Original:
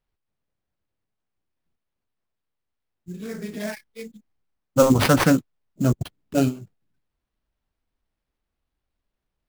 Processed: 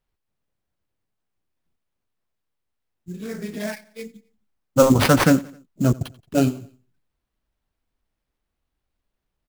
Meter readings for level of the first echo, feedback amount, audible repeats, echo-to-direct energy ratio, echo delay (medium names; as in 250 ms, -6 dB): -21.5 dB, 47%, 3, -20.5 dB, 88 ms